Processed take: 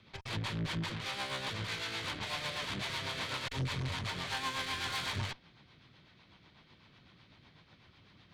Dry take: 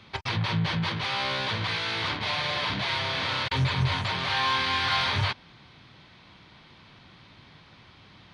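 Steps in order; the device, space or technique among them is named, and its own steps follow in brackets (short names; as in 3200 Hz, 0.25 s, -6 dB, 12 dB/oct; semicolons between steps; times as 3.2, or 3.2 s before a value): overdriven rotary cabinet (tube stage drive 28 dB, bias 0.75; rotary speaker horn 8 Hz); gain -2 dB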